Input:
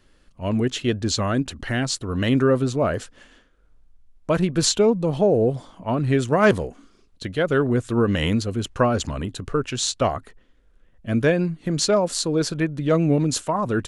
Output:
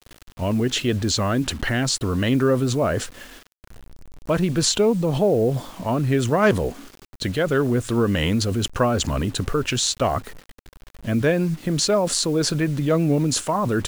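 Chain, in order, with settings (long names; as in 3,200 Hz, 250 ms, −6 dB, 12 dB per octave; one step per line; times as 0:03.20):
in parallel at −1.5 dB: compressor whose output falls as the input rises −30 dBFS, ratio −1
on the sum: bit reduction 7 bits
level −1.5 dB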